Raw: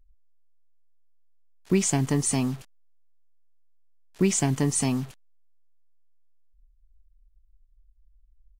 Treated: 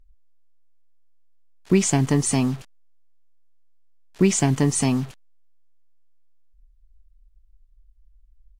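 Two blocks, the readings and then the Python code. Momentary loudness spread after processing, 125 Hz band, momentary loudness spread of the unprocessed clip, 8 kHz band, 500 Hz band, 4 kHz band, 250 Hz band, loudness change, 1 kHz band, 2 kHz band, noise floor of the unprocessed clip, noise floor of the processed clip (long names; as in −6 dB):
8 LU, +4.5 dB, 8 LU, +2.0 dB, +4.5 dB, +3.5 dB, +4.5 dB, +4.0 dB, +4.5 dB, +4.0 dB, −61 dBFS, −56 dBFS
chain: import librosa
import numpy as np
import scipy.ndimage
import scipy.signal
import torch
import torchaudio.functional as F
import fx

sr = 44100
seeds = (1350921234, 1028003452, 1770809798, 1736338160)

y = fx.high_shelf(x, sr, hz=10000.0, db=-8.0)
y = y * 10.0 ** (4.5 / 20.0)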